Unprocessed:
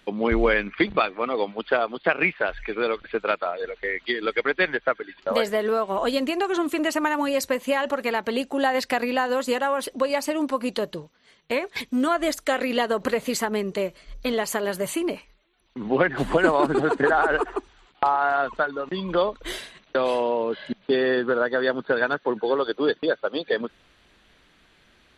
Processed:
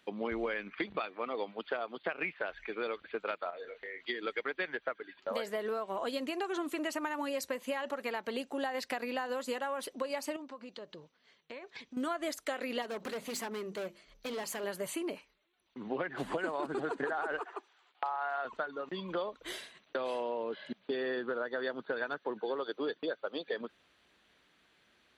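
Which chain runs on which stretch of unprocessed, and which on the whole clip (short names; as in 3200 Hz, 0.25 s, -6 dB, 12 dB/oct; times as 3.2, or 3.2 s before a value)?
3.5–4.08 compressor 3:1, threshold -33 dBFS + doubler 29 ms -7 dB
10.36–11.97 LPF 6500 Hz 24 dB/oct + compressor 3:1, threshold -36 dBFS
12.82–14.64 notches 50/100/150/200/250/300/350 Hz + overloaded stage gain 25 dB
17.39–18.45 HPF 550 Hz + air absorption 53 m
whole clip: HPF 43 Hz; low shelf 120 Hz -11.5 dB; compressor, threshold -22 dBFS; gain -9 dB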